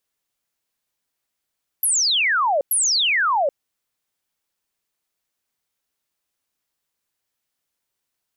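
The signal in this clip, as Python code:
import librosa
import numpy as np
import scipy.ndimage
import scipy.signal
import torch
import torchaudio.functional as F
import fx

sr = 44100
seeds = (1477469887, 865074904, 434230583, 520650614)

y = fx.laser_zaps(sr, level_db=-16.0, start_hz=12000.0, end_hz=530.0, length_s=0.78, wave='sine', shots=2, gap_s=0.1)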